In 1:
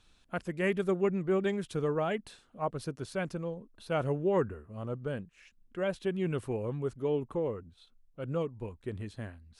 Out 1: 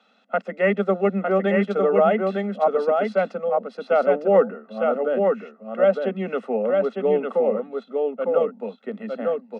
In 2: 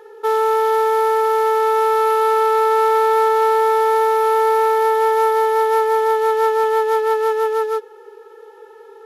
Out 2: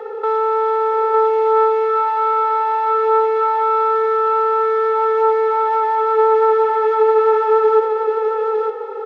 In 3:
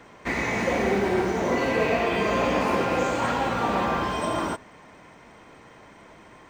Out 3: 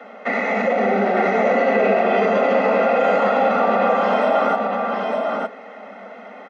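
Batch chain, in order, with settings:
Butterworth high-pass 200 Hz 96 dB per octave
comb filter 1.5 ms, depth 99%
in parallel at −2 dB: compressor whose output falls as the input rises −23 dBFS, ratio −1
on the sum: brickwall limiter −13 dBFS
head-to-tape spacing loss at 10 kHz 36 dB
on a send: single-tap delay 906 ms −3.5 dB
on the sum: normalise the peak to −6 dBFS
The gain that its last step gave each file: +7.5, +5.0, +6.0 decibels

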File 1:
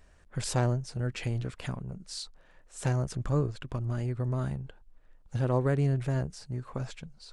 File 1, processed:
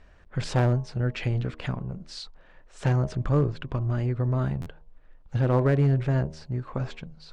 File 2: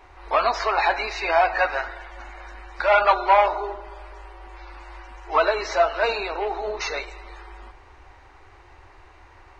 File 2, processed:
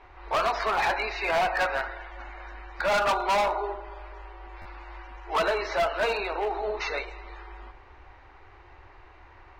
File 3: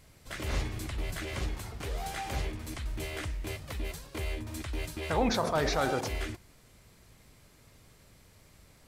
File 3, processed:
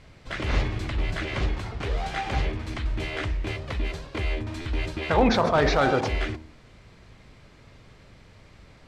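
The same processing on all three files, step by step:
low-pass filter 3,800 Hz 12 dB per octave
hum removal 78.2 Hz, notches 14
hard clipping −19.5 dBFS
buffer that repeats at 0:04.61, samples 512, times 3
loudness normalisation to −27 LKFS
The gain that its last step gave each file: +5.5, −1.5, +8.5 decibels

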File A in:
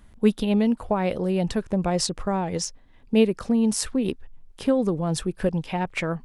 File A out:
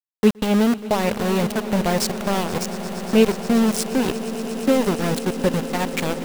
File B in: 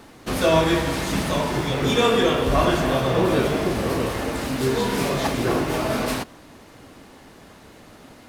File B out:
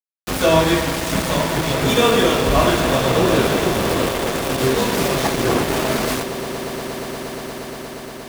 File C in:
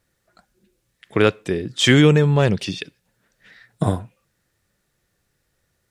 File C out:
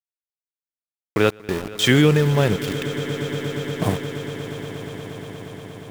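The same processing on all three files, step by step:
centre clipping without the shift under −23.5 dBFS
echo that builds up and dies away 118 ms, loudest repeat 8, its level −18 dB
normalise the peak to −3 dBFS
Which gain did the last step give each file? +3.5, +3.5, −2.0 decibels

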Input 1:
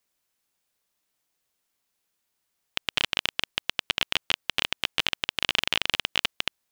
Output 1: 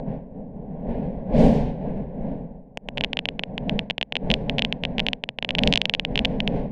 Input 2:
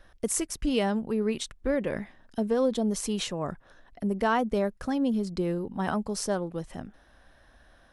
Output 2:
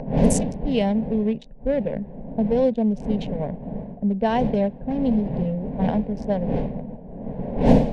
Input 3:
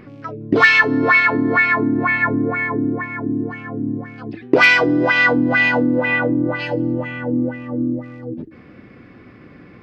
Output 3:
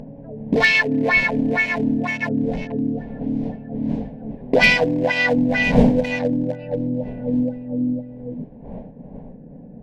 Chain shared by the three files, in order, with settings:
adaptive Wiener filter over 41 samples
wind on the microphone 310 Hz −30 dBFS
low-pass that shuts in the quiet parts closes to 1,000 Hz, open at −15 dBFS
upward compression, threshold −33 dBFS
phaser with its sweep stopped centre 340 Hz, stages 6
normalise the peak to −1.5 dBFS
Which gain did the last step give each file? +7.0, +7.5, +3.0 decibels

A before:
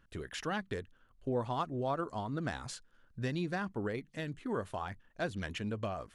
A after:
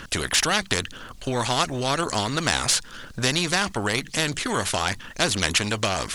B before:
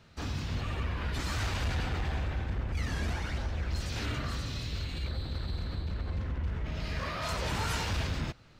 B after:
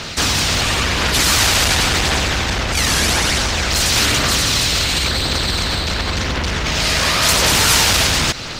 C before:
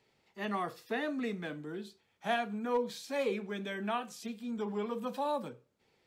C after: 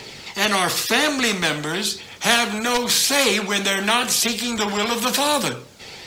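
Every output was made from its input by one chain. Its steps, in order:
parametric band 5,400 Hz +10 dB 2.4 octaves
phase shifter 0.94 Hz, delay 1.6 ms, feedback 28%
every bin compressed towards the loudest bin 2 to 1
normalise the peak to −2 dBFS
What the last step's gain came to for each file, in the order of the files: +16.5, +14.5, +15.5 decibels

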